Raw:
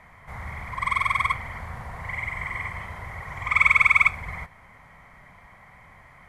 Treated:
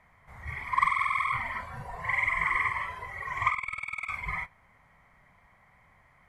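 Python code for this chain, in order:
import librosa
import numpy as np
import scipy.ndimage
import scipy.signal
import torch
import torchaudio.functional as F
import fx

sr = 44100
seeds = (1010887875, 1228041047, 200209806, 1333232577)

y = fx.over_compress(x, sr, threshold_db=-26.0, ratio=-0.5)
y = fx.noise_reduce_blind(y, sr, reduce_db=12)
y = fx.dynamic_eq(y, sr, hz=1200.0, q=1.1, threshold_db=-43.0, ratio=4.0, max_db=7)
y = y * librosa.db_to_amplitude(-3.0)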